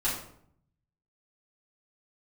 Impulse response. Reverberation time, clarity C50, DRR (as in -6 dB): 0.65 s, 4.5 dB, -9.5 dB